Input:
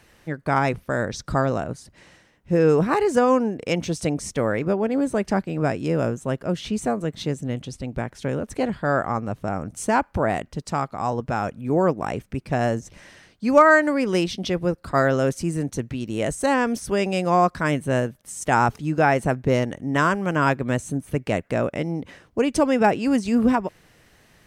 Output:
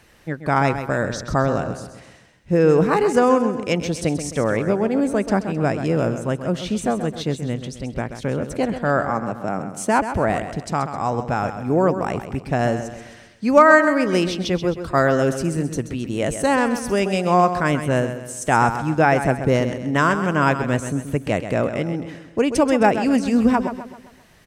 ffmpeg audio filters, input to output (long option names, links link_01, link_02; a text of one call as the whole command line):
ffmpeg -i in.wav -filter_complex "[0:a]asettb=1/sr,asplit=3[link_01][link_02][link_03];[link_01]atrim=end=9.094[link_04];[link_02]atrim=start=9.09:end=9.99,asetpts=PTS-STARTPTS,afade=type=in:duration=0.004:curve=qsin,afade=type=out:start_time=0.896:duration=0.004:curve=qsin,highpass=frequency=130:width=0.5412,highpass=frequency=130:width=1.3066[link_05];[link_03]atrim=start=9.986[link_06];[link_04][link_05]acrossfade=duration=0.004:curve1=hsin:curve2=qsin[link_07];[link_07][link_06]acrossfade=duration=0.004:curve1=qsin:curve2=hsin,aecho=1:1:131|262|393|524|655:0.316|0.139|0.0612|0.0269|0.0119,volume=2dB" out.wav